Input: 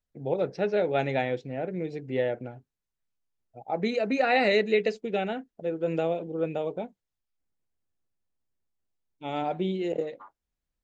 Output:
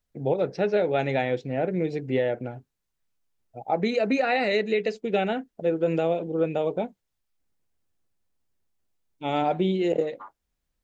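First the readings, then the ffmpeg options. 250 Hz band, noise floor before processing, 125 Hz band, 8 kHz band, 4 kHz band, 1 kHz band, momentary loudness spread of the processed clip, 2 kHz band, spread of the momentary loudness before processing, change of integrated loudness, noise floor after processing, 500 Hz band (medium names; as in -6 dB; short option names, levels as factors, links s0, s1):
+4.0 dB, under -85 dBFS, +4.0 dB, no reading, +1.0 dB, +2.5 dB, 9 LU, +0.5 dB, 13 LU, +2.5 dB, -80 dBFS, +2.5 dB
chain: -af "alimiter=limit=0.1:level=0:latency=1:release=363,volume=2"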